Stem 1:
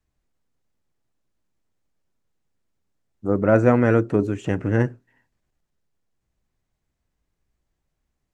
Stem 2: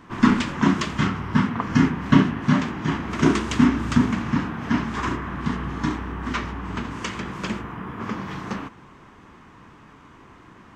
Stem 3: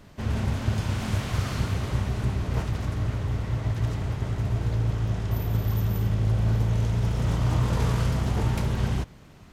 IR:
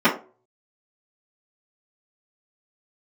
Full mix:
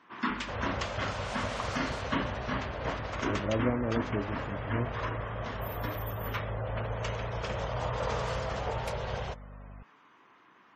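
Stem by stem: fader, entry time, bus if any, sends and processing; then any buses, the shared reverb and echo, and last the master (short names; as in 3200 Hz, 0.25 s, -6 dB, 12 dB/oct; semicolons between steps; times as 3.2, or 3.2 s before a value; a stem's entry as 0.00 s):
-13.5 dB, 0.00 s, no send, envelope flanger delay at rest 8.1 ms, full sweep at -14.5 dBFS
-9.5 dB, 0.00 s, no send, weighting filter A
-2.5 dB, 0.30 s, no send, resonant low shelf 390 Hz -10.5 dB, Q 3; hum 50 Hz, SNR 11 dB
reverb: off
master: spectral gate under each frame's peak -30 dB strong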